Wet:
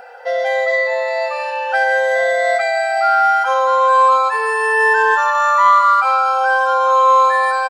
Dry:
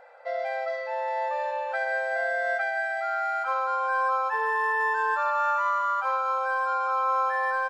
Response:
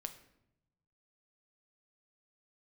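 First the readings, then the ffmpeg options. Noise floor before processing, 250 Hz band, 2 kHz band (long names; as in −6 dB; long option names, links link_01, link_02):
−32 dBFS, can't be measured, +11.0 dB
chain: -af "afftfilt=real='re*pow(10,11/40*sin(2*PI*(1.1*log(max(b,1)*sr/1024/100)/log(2)-(0.63)*(pts-256)/sr)))':imag='im*pow(10,11/40*sin(2*PI*(1.1*log(max(b,1)*sr/1024/100)/log(2)-(0.63)*(pts-256)/sr)))':win_size=1024:overlap=0.75,highshelf=frequency=3800:gain=9,aecho=1:1:4.1:0.49,acontrast=82,volume=3dB"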